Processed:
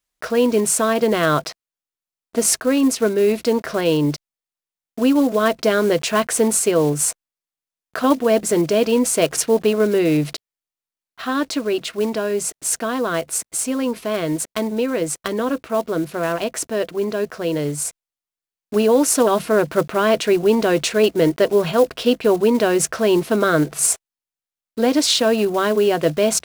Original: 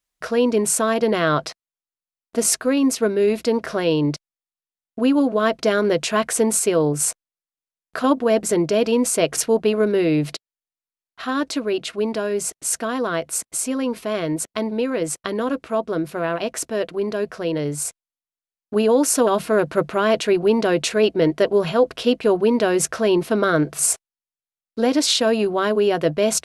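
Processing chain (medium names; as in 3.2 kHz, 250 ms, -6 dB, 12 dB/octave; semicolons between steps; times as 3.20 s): block-companded coder 5-bit; trim +1.5 dB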